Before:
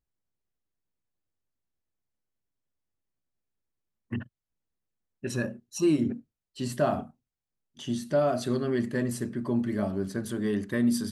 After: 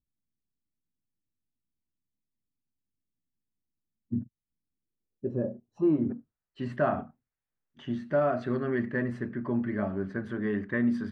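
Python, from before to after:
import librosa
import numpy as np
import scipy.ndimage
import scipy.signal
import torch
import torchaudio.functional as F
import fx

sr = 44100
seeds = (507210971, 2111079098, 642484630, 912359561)

y = fx.filter_sweep_lowpass(x, sr, from_hz=250.0, to_hz=1800.0, start_s=4.64, end_s=6.54, q=1.9)
y = y * librosa.db_to_amplitude(-2.0)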